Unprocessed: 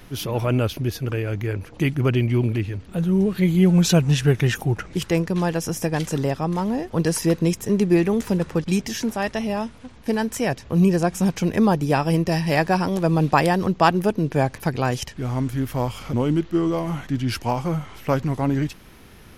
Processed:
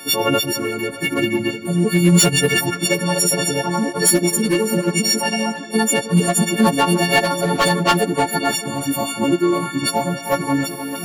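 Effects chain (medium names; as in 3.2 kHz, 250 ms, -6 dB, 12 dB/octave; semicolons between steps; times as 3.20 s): partials quantised in pitch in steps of 4 st; high-pass 170 Hz 24 dB/octave; overload inside the chain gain 12 dB; on a send: tape echo 540 ms, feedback 57%, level -11 dB, low-pass 2.6 kHz; on the sum: plain phase-vocoder stretch 0.57×; reverse; upward compressor, threshold -27 dBFS; reverse; trim +6.5 dB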